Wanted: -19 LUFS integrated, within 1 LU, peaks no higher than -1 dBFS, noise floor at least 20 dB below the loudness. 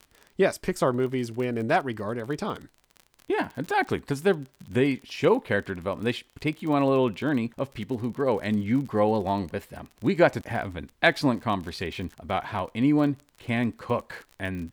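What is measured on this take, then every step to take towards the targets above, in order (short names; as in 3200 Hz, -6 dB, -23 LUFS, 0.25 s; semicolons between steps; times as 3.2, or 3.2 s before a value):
ticks 39/s; loudness -27.0 LUFS; peak -6.5 dBFS; loudness target -19.0 LUFS
-> de-click; gain +8 dB; limiter -1 dBFS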